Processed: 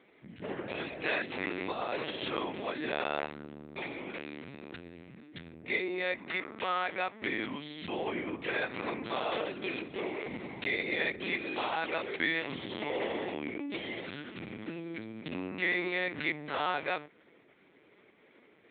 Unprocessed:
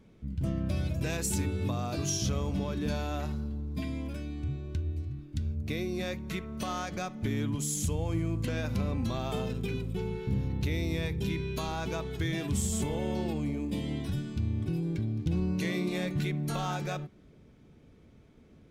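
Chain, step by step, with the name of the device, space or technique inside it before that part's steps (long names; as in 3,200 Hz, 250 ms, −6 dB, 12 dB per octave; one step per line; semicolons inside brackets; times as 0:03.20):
talking toy (linear-prediction vocoder at 8 kHz pitch kept; high-pass filter 420 Hz 12 dB per octave; parametric band 2,000 Hz +9 dB 0.54 octaves)
level +3.5 dB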